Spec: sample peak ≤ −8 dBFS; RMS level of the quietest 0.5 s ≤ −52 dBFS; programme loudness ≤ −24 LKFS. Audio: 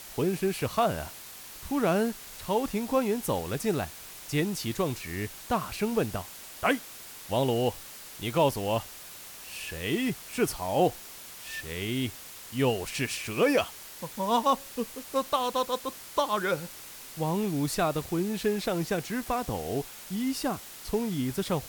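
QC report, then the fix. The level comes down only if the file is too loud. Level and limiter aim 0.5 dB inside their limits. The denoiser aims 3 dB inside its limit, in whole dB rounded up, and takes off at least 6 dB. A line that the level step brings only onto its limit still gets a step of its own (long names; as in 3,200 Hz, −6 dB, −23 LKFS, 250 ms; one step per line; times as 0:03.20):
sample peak −12.5 dBFS: in spec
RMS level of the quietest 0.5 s −45 dBFS: out of spec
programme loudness −30.0 LKFS: in spec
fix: broadband denoise 10 dB, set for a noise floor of −45 dBFS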